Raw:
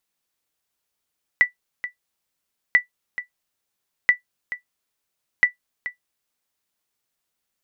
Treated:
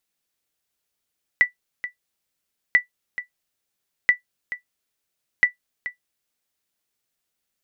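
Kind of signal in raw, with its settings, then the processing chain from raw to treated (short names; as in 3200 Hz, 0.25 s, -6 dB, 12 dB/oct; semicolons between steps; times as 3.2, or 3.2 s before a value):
sonar ping 1970 Hz, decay 0.12 s, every 1.34 s, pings 4, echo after 0.43 s, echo -14 dB -5.5 dBFS
bell 1000 Hz -4 dB 0.77 oct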